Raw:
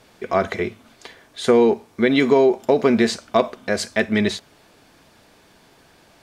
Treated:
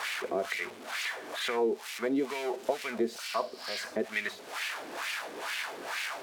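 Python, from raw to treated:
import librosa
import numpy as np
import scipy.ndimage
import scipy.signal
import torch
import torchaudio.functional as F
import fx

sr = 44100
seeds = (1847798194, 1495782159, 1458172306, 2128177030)

y = x + 0.5 * 10.0 ** (-10.5 / 20.0) * np.diff(np.sign(x), prepend=np.sign(x[:1]))
y = fx.spec_repair(y, sr, seeds[0], start_s=3.24, length_s=0.54, low_hz=1300.0, high_hz=5700.0, source='both')
y = fx.wah_lfo(y, sr, hz=2.2, low_hz=340.0, high_hz=2400.0, q=2.1)
y = fx.band_squash(y, sr, depth_pct=70)
y = y * librosa.db_to_amplitude(-5.5)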